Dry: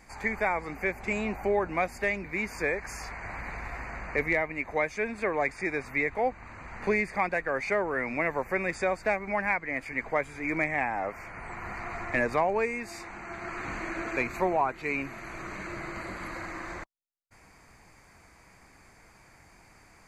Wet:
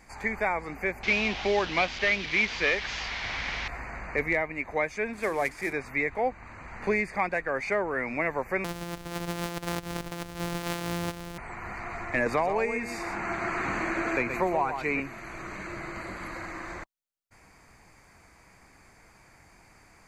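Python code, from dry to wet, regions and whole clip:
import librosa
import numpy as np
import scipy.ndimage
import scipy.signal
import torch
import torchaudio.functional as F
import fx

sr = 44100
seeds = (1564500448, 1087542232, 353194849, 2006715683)

y = fx.chain(x, sr, fx.delta_mod(bps=32000, step_db=-35.5),
    fx.peak_eq(hz=3000.0, db=12.0, octaves=1.3), at=(1.03, 3.68))
y = fx.chain(y, sr, fx.cvsd(bps=64000),
    fx.hum_notches(base_hz=60, count=6), at=(5.13, 5.73))
y = fx.chain(y, sr, fx.sample_sort(block=256),
    fx.over_compress(threshold_db=-33.0, ratio=-1.0), at=(8.64, 11.38))
y = fx.chain(y, sr, fx.echo_single(ms=123, db=-9.0),
    fx.band_squash(depth_pct=70), at=(12.26, 15.0))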